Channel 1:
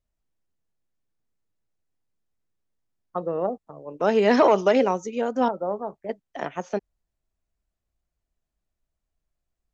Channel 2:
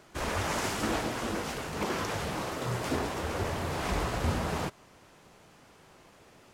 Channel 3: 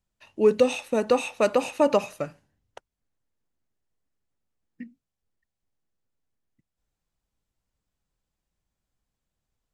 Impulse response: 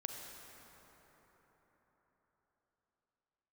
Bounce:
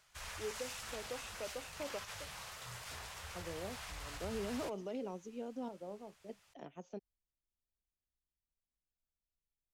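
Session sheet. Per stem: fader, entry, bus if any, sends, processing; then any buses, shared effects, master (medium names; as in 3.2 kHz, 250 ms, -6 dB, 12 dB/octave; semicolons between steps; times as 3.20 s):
-15.0 dB, 0.20 s, bus A, no send, none
-5.5 dB, 0.00 s, no bus, no send, amplifier tone stack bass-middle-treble 10-0-10; peak limiter -31.5 dBFS, peak gain reduction 8 dB
-16.0 dB, 0.00 s, bus A, no send, high-pass 450 Hz 12 dB/octave
bus A: 0.0 dB, FFT filter 280 Hz 0 dB, 1.8 kHz -13 dB, 2.9 kHz -4 dB; peak limiter -33.5 dBFS, peak gain reduction 6.5 dB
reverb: none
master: none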